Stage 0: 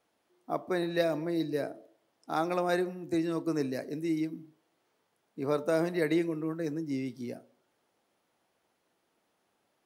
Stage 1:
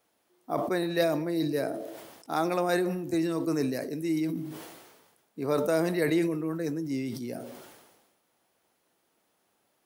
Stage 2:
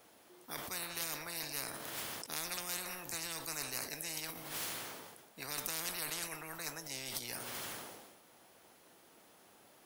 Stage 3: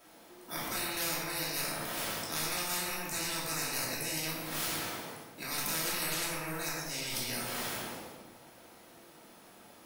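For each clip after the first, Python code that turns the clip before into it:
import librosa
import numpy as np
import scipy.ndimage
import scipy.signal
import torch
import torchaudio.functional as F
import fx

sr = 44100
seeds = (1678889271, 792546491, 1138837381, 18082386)

y1 = fx.high_shelf(x, sr, hz=8400.0, db=10.0)
y1 = fx.sustainer(y1, sr, db_per_s=43.0)
y1 = F.gain(torch.from_numpy(y1), 1.5).numpy()
y2 = fx.spectral_comp(y1, sr, ratio=10.0)
y2 = F.gain(torch.from_numpy(y2), -5.0).numpy()
y3 = fx.room_shoebox(y2, sr, seeds[0], volume_m3=530.0, walls='mixed', distance_m=2.8)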